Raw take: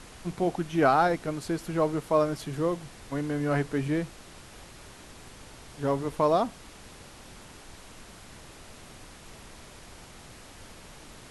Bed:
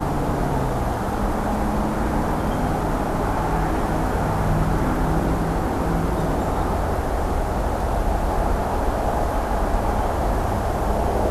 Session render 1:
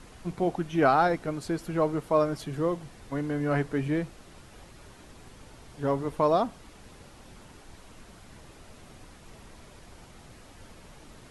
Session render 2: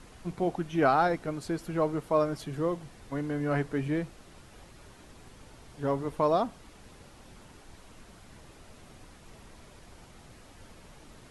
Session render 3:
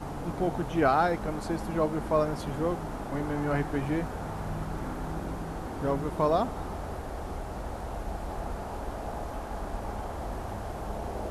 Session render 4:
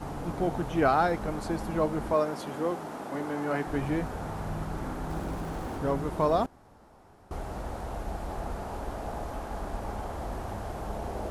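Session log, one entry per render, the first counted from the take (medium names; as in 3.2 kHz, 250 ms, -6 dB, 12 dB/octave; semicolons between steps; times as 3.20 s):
noise reduction 6 dB, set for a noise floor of -49 dBFS
trim -2 dB
add bed -14 dB
2.13–3.67 s: high-pass 220 Hz; 5.10–5.78 s: jump at every zero crossing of -45 dBFS; 6.46–7.31 s: room tone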